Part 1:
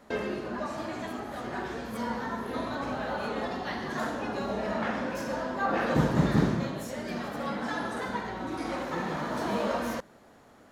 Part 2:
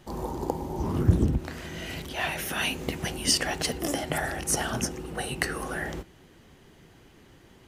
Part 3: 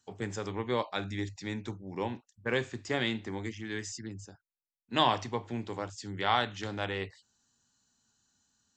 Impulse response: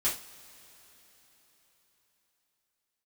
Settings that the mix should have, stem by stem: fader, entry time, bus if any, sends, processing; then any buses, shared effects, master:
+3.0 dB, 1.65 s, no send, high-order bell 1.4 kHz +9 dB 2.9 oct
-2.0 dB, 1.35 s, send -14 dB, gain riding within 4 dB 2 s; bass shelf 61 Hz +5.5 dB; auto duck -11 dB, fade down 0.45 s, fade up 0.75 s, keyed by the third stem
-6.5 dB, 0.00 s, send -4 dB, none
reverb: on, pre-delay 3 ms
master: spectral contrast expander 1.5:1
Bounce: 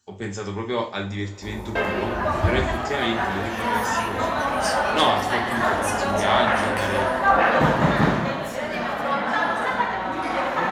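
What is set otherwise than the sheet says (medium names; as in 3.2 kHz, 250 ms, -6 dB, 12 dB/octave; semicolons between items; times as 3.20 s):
stem 3 -6.5 dB -> 0.0 dB; master: missing spectral contrast expander 1.5:1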